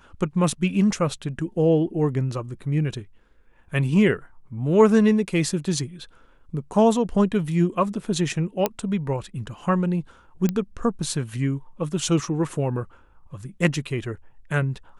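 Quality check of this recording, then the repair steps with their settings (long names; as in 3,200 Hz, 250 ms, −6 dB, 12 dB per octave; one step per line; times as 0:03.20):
0:08.66: click −7 dBFS
0:10.49: click −11 dBFS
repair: click removal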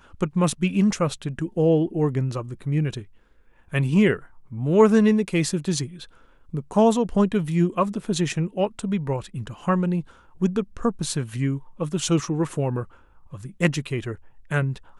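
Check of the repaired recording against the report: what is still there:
none of them is left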